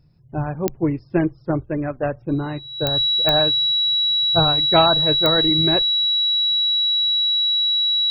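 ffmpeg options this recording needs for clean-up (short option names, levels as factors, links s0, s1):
-af "adeclick=t=4,bandreject=f=3900:w=30"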